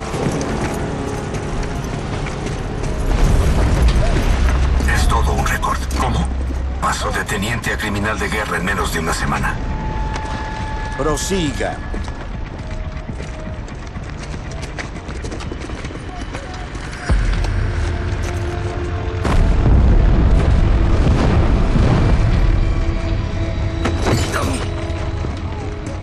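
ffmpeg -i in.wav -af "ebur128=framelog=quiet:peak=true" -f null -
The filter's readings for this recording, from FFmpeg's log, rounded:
Integrated loudness:
  I:         -19.8 LUFS
  Threshold: -29.8 LUFS
Loudness range:
  LRA:        11.7 LU
  Threshold: -39.6 LUFS
  LRA low:   -27.8 LUFS
  LRA high:  -16.1 LUFS
True peak:
  Peak:       -3.2 dBFS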